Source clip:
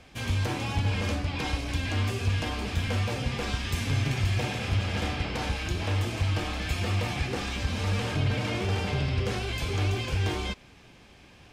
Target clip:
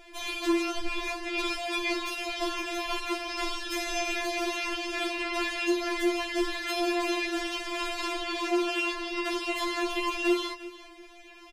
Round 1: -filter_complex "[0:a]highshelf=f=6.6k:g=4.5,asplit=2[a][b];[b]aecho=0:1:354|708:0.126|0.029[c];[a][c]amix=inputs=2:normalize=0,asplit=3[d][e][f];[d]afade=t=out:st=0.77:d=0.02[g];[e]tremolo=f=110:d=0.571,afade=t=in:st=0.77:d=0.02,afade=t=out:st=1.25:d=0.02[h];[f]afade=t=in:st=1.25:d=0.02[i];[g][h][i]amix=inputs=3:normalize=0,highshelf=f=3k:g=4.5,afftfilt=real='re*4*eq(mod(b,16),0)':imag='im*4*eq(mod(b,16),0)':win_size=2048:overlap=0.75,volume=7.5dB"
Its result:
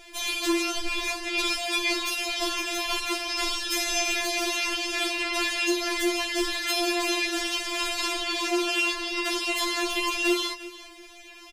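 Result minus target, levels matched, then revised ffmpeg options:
8000 Hz band +6.0 dB
-filter_complex "[0:a]highshelf=f=6.6k:g=4.5,asplit=2[a][b];[b]aecho=0:1:354|708:0.126|0.029[c];[a][c]amix=inputs=2:normalize=0,asplit=3[d][e][f];[d]afade=t=out:st=0.77:d=0.02[g];[e]tremolo=f=110:d=0.571,afade=t=in:st=0.77:d=0.02,afade=t=out:st=1.25:d=0.02[h];[f]afade=t=in:st=1.25:d=0.02[i];[g][h][i]amix=inputs=3:normalize=0,highshelf=f=3k:g=-7,afftfilt=real='re*4*eq(mod(b,16),0)':imag='im*4*eq(mod(b,16),0)':win_size=2048:overlap=0.75,volume=7.5dB"

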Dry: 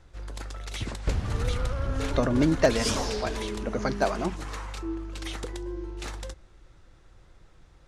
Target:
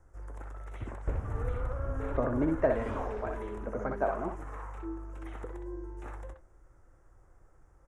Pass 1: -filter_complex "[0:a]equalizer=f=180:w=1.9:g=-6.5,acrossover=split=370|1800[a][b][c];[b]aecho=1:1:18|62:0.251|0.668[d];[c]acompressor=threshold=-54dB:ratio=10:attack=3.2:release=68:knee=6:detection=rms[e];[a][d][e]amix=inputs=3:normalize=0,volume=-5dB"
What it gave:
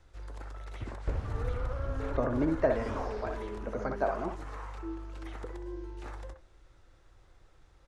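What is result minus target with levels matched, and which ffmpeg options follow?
4000 Hz band +8.0 dB
-filter_complex "[0:a]equalizer=f=180:w=1.9:g=-6.5,acrossover=split=370|1800[a][b][c];[b]aecho=1:1:18|62:0.251|0.668[d];[c]acompressor=threshold=-54dB:ratio=10:attack=3.2:release=68:knee=6:detection=rms,asuperstop=centerf=3400:order=4:qfactor=0.63[e];[a][d][e]amix=inputs=3:normalize=0,volume=-5dB"

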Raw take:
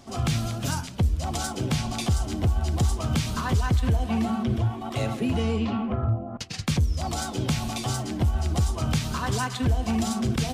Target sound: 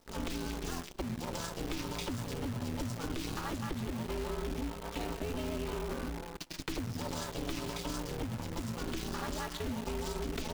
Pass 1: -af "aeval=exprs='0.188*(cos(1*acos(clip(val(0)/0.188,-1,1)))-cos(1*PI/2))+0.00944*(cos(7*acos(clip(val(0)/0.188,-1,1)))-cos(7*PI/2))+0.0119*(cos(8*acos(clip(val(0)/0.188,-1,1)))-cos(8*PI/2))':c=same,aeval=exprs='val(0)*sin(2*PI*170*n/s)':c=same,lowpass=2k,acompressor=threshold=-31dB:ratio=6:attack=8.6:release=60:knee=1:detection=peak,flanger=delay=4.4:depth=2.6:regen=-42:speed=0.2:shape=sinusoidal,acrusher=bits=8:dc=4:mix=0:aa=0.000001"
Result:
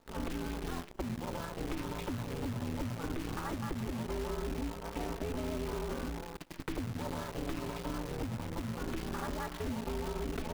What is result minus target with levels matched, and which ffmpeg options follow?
8000 Hz band -5.0 dB
-af "aeval=exprs='0.188*(cos(1*acos(clip(val(0)/0.188,-1,1)))-cos(1*PI/2))+0.00944*(cos(7*acos(clip(val(0)/0.188,-1,1)))-cos(7*PI/2))+0.0119*(cos(8*acos(clip(val(0)/0.188,-1,1)))-cos(8*PI/2))':c=same,aeval=exprs='val(0)*sin(2*PI*170*n/s)':c=same,lowpass=7.2k,acompressor=threshold=-31dB:ratio=6:attack=8.6:release=60:knee=1:detection=peak,flanger=delay=4.4:depth=2.6:regen=-42:speed=0.2:shape=sinusoidal,acrusher=bits=8:dc=4:mix=0:aa=0.000001"

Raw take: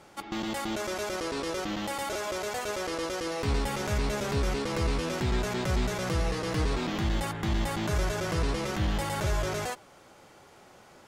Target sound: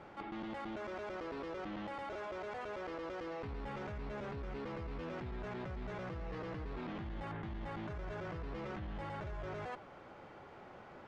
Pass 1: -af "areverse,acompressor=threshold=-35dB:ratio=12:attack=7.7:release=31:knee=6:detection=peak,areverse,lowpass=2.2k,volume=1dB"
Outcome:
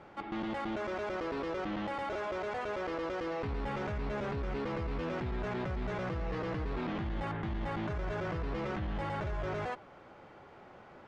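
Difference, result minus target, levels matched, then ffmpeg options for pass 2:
compressor: peak gain reduction -7.5 dB
-af "areverse,acompressor=threshold=-43dB:ratio=12:attack=7.7:release=31:knee=6:detection=peak,areverse,lowpass=2.2k,volume=1dB"

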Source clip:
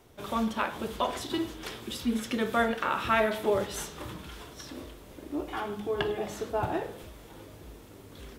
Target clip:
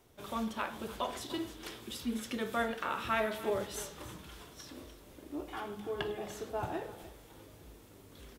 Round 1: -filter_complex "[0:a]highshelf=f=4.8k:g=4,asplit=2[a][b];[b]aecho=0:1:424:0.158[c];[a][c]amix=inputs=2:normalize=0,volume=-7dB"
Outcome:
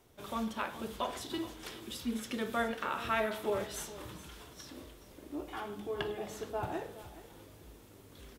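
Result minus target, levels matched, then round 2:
echo 0.127 s late
-filter_complex "[0:a]highshelf=f=4.8k:g=4,asplit=2[a][b];[b]aecho=0:1:297:0.158[c];[a][c]amix=inputs=2:normalize=0,volume=-7dB"

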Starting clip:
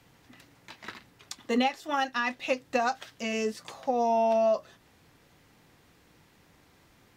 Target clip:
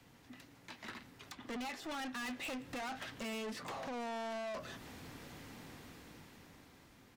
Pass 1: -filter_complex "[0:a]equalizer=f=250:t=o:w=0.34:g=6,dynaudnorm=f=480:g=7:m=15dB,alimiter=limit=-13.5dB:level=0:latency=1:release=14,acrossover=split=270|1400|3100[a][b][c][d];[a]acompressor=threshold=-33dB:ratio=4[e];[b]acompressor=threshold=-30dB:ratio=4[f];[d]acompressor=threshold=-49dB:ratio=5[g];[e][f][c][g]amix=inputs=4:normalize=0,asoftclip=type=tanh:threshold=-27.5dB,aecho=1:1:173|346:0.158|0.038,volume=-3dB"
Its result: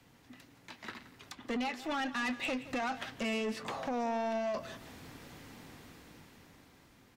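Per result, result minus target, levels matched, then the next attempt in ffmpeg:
echo-to-direct +8 dB; soft clip: distortion -6 dB
-filter_complex "[0:a]equalizer=f=250:t=o:w=0.34:g=6,dynaudnorm=f=480:g=7:m=15dB,alimiter=limit=-13.5dB:level=0:latency=1:release=14,acrossover=split=270|1400|3100[a][b][c][d];[a]acompressor=threshold=-33dB:ratio=4[e];[b]acompressor=threshold=-30dB:ratio=4[f];[d]acompressor=threshold=-49dB:ratio=5[g];[e][f][c][g]amix=inputs=4:normalize=0,asoftclip=type=tanh:threshold=-27.5dB,aecho=1:1:173|346:0.0631|0.0151,volume=-3dB"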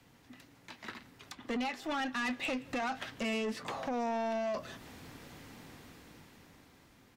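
soft clip: distortion -6 dB
-filter_complex "[0:a]equalizer=f=250:t=o:w=0.34:g=6,dynaudnorm=f=480:g=7:m=15dB,alimiter=limit=-13.5dB:level=0:latency=1:release=14,acrossover=split=270|1400|3100[a][b][c][d];[a]acompressor=threshold=-33dB:ratio=4[e];[b]acompressor=threshold=-30dB:ratio=4[f];[d]acompressor=threshold=-49dB:ratio=5[g];[e][f][c][g]amix=inputs=4:normalize=0,asoftclip=type=tanh:threshold=-37dB,aecho=1:1:173|346:0.0631|0.0151,volume=-3dB"

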